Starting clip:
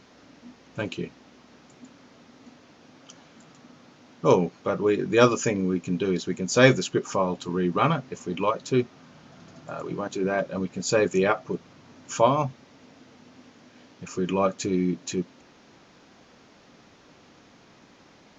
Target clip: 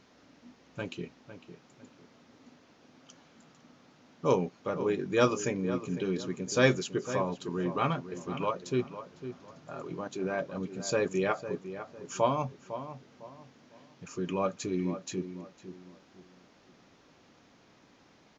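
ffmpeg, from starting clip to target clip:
-filter_complex "[0:a]asplit=2[s0][s1];[s1]adelay=504,lowpass=f=1900:p=1,volume=0.282,asplit=2[s2][s3];[s3]adelay=504,lowpass=f=1900:p=1,volume=0.33,asplit=2[s4][s5];[s5]adelay=504,lowpass=f=1900:p=1,volume=0.33,asplit=2[s6][s7];[s7]adelay=504,lowpass=f=1900:p=1,volume=0.33[s8];[s0][s2][s4][s6][s8]amix=inputs=5:normalize=0,volume=0.447"

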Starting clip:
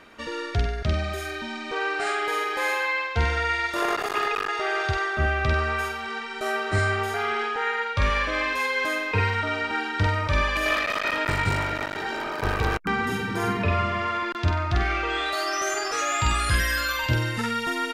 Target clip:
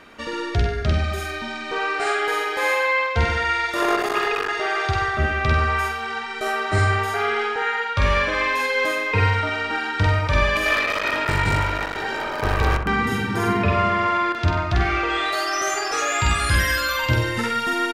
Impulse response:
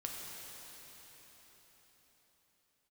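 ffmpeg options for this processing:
-filter_complex "[0:a]asplit=2[s0][s1];[s1]adelay=63,lowpass=f=2000:p=1,volume=0.531,asplit=2[s2][s3];[s3]adelay=63,lowpass=f=2000:p=1,volume=0.55,asplit=2[s4][s5];[s5]adelay=63,lowpass=f=2000:p=1,volume=0.55,asplit=2[s6][s7];[s7]adelay=63,lowpass=f=2000:p=1,volume=0.55,asplit=2[s8][s9];[s9]adelay=63,lowpass=f=2000:p=1,volume=0.55,asplit=2[s10][s11];[s11]adelay=63,lowpass=f=2000:p=1,volume=0.55,asplit=2[s12][s13];[s13]adelay=63,lowpass=f=2000:p=1,volume=0.55[s14];[s0][s2][s4][s6][s8][s10][s12][s14]amix=inputs=8:normalize=0,volume=1.41"

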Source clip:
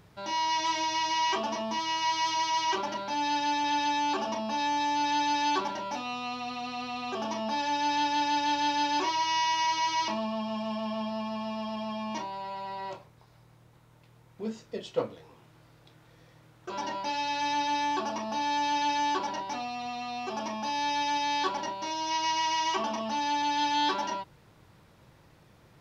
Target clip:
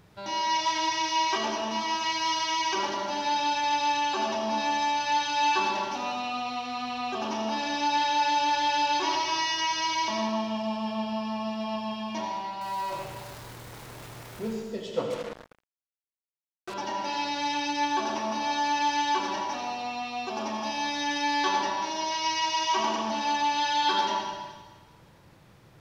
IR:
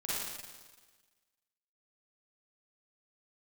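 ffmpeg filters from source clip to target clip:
-filter_complex "[0:a]asettb=1/sr,asplit=3[s0][s1][s2];[s0]atrim=end=12.614[s3];[s1]atrim=start=12.61:end=14.53,asetpts=PTS-STARTPTS,afade=t=in:d=0.004:c=qsin,afade=t=out:st=1.916:d=0.004:c=qsin,aeval=exprs='val(0)+0.5*0.0106*sgn(val(0))':c=same[s4];[s2]atrim=start=14.526[s5];[s3][s4]acrossfade=d=0.004:c1=hsin:c2=qsin[s6];[s6][s5]acrossfade=d=0.004:c1=qsin:c2=hsin,asplit=2[s7][s8];[1:a]atrim=start_sample=2205,adelay=35[s9];[s8][s9]afir=irnorm=-1:irlink=0,volume=0.562[s10];[s7][s10]amix=inputs=2:normalize=0,asettb=1/sr,asplit=3[s11][s12][s13];[s11]atrim=end=15.104[s14];[s12]atrim=start=15.1:end=16.74,asetpts=PTS-STARTPTS,afade=t=in:d=0.004:c=qsin,afade=t=out:st=1.636:d=0.004:c=qsin,acrusher=bits=5:mix=0:aa=0.5[s15];[s13]atrim=start=16.736[s16];[s14][s15]acrossfade=d=0.004:c1=hsin:c2=qsin[s17];[s17][s16]acrossfade=d=0.004:c1=qsin:c2=hsin"

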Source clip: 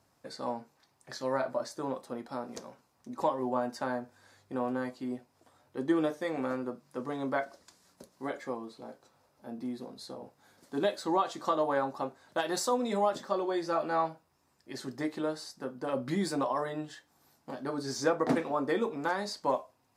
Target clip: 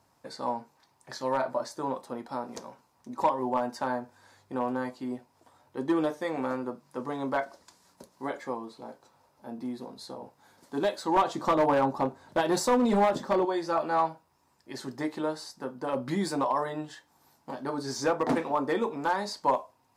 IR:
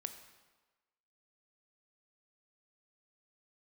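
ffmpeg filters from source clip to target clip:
-filter_complex "[0:a]asettb=1/sr,asplit=3[s0][s1][s2];[s0]atrim=end=11.164[s3];[s1]atrim=start=11.16:end=13.45,asetpts=PTS-STARTPTS,afade=t=in:d=0.004:c=qsin,afade=t=out:st=2.286:d=0.004:c=qsin,lowshelf=f=470:g=10.5[s4];[s2]atrim=start=13.446[s5];[s3][s4]acrossfade=d=0.004:c1=hsin:c2=qsin[s6];[s6][s5]acrossfade=d=0.004:c1=qsin:c2=hsin,volume=11.9,asoftclip=hard,volume=0.0841,equalizer=f=930:w=4.4:g=7,volume=1.19"

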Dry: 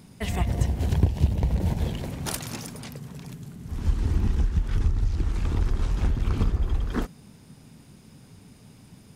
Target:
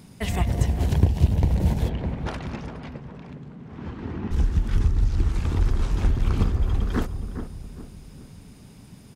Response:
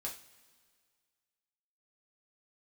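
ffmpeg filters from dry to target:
-filter_complex "[0:a]asplit=3[s0][s1][s2];[s0]afade=t=out:st=1.88:d=0.02[s3];[s1]highpass=170,lowpass=2300,afade=t=in:st=1.88:d=0.02,afade=t=out:st=4.3:d=0.02[s4];[s2]afade=t=in:st=4.3:d=0.02[s5];[s3][s4][s5]amix=inputs=3:normalize=0,asplit=2[s6][s7];[s7]adelay=411,lowpass=f=1100:p=1,volume=0.398,asplit=2[s8][s9];[s9]adelay=411,lowpass=f=1100:p=1,volume=0.44,asplit=2[s10][s11];[s11]adelay=411,lowpass=f=1100:p=1,volume=0.44,asplit=2[s12][s13];[s13]adelay=411,lowpass=f=1100:p=1,volume=0.44,asplit=2[s14][s15];[s15]adelay=411,lowpass=f=1100:p=1,volume=0.44[s16];[s6][s8][s10][s12][s14][s16]amix=inputs=6:normalize=0,volume=1.26"

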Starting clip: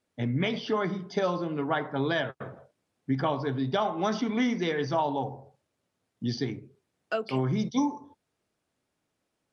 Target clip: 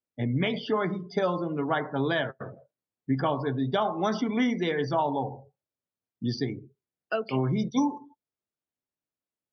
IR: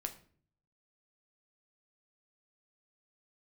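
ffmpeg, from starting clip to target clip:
-filter_complex "[0:a]asplit=2[s0][s1];[1:a]atrim=start_sample=2205,atrim=end_sample=6174[s2];[s1][s2]afir=irnorm=-1:irlink=0,volume=0.158[s3];[s0][s3]amix=inputs=2:normalize=0,afftdn=nr=19:nf=-42"

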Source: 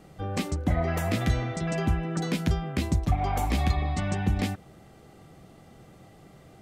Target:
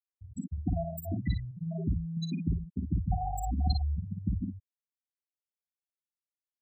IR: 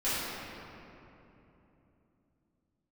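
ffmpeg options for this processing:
-af "crystalizer=i=6:c=0,afftfilt=real='re*gte(hypot(re,im),0.282)':imag='im*gte(hypot(re,im),0.282)':win_size=1024:overlap=0.75,aecho=1:1:44|55:0.266|0.531,volume=0.562"

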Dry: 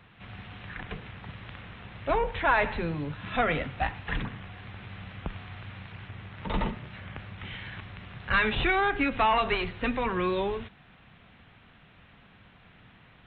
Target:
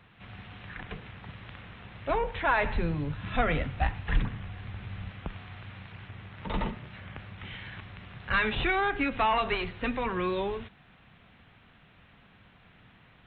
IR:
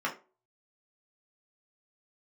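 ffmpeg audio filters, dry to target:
-filter_complex "[0:a]asettb=1/sr,asplit=3[s0][s1][s2];[s0]atrim=end=2.654[s3];[s1]atrim=start=2.65:end=5.11,asetpts=PTS-STARTPTS,afade=t=in:d=0.004:c=qsin,afade=t=out:st=2.456:d=0.004:c=qsin,lowshelf=f=110:g=12[s4];[s2]atrim=start=5.106[s5];[s3][s4]acrossfade=d=0.004:c1=hsin:c2=qsin[s6];[s6][s5]acrossfade=d=0.004:c1=qsin:c2=hsin,volume=0.794"

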